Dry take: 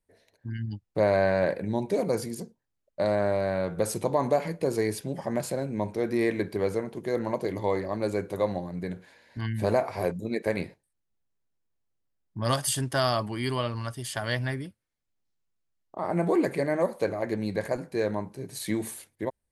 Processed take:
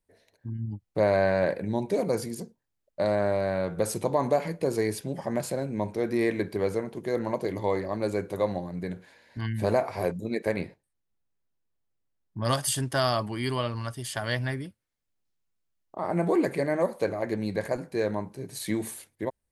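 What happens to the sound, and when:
0:00.48–0:00.80: gain on a spectral selection 1,200–6,900 Hz −24 dB
0:10.52–0:12.45: high-shelf EQ 4,200 Hz −6 dB

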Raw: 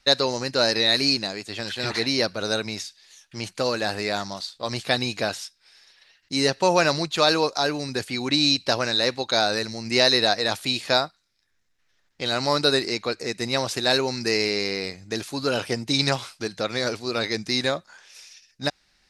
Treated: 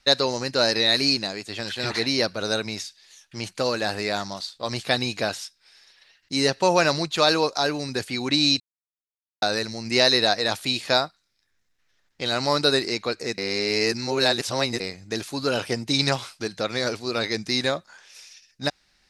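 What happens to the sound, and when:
0:08.60–0:09.42: silence
0:13.38–0:14.80: reverse

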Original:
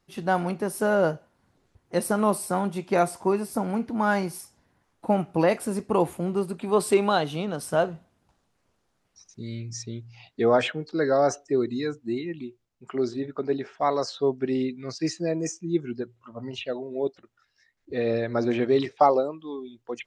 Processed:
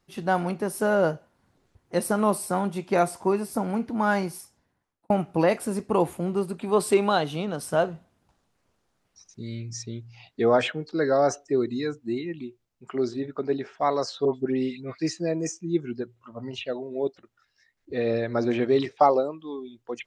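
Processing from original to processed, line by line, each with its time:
0:04.23–0:05.10: fade out
0:14.25–0:15.00: all-pass dispersion highs, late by 104 ms, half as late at 1,800 Hz

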